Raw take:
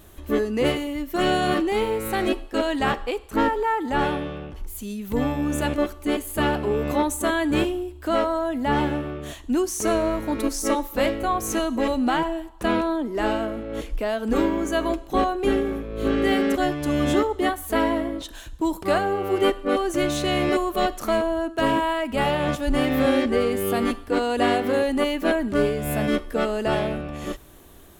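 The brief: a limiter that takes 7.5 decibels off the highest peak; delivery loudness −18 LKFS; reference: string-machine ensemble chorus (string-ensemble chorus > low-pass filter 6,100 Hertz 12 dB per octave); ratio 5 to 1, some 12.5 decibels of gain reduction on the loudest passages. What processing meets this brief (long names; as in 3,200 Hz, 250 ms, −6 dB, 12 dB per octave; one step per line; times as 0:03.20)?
downward compressor 5 to 1, threshold −31 dBFS
brickwall limiter −26 dBFS
string-ensemble chorus
low-pass filter 6,100 Hz 12 dB per octave
level +21 dB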